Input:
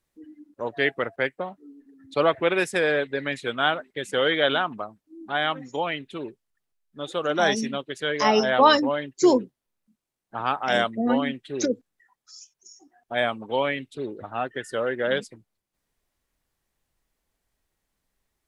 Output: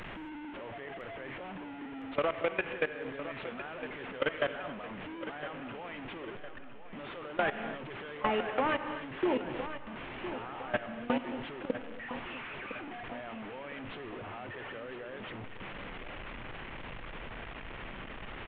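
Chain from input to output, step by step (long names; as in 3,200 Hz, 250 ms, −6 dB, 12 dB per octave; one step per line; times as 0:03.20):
linear delta modulator 16 kbit/s, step −24 dBFS
parametric band 69 Hz −14.5 dB 0.24 octaves
output level in coarse steps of 21 dB
reverb whose tail is shaped and stops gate 300 ms flat, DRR 11.5 dB
dynamic equaliser 2,300 Hz, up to +5 dB, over −38 dBFS, Q 1
downward compressor 6 to 1, threshold −25 dBFS, peak gain reduction 8.5 dB
repeating echo 1,009 ms, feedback 49%, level −11.5 dB
level −1.5 dB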